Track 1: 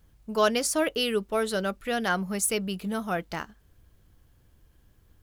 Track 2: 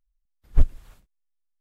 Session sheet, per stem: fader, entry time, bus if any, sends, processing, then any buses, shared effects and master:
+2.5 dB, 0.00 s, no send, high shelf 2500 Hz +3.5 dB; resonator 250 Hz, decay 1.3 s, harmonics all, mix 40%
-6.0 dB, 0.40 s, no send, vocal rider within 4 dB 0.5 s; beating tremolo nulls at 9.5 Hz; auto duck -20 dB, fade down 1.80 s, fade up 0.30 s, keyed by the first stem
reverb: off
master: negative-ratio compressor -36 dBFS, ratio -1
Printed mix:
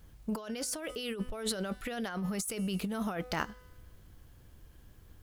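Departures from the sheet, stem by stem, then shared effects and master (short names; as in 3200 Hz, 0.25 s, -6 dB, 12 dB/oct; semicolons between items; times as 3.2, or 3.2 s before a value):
stem 1: missing high shelf 2500 Hz +3.5 dB; stem 2: entry 0.40 s -> 0.70 s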